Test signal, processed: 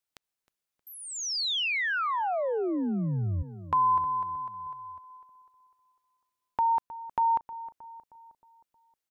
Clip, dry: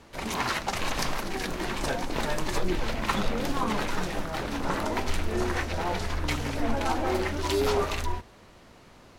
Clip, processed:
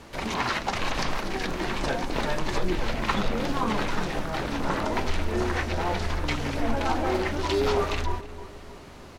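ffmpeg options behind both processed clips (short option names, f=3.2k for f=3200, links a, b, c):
-filter_complex "[0:a]asplit=2[a][b];[b]acompressor=threshold=-40dB:ratio=6,volume=0dB[c];[a][c]amix=inputs=2:normalize=0,asplit=2[d][e];[e]adelay=313,lowpass=f=1.5k:p=1,volume=-14.5dB,asplit=2[f][g];[g]adelay=313,lowpass=f=1.5k:p=1,volume=0.55,asplit=2[h][i];[i]adelay=313,lowpass=f=1.5k:p=1,volume=0.55,asplit=2[j][k];[k]adelay=313,lowpass=f=1.5k:p=1,volume=0.55,asplit=2[l][m];[m]adelay=313,lowpass=f=1.5k:p=1,volume=0.55[n];[d][f][h][j][l][n]amix=inputs=6:normalize=0,acrossover=split=6100[o][p];[p]acompressor=threshold=-51dB:ratio=4:attack=1:release=60[q];[o][q]amix=inputs=2:normalize=0"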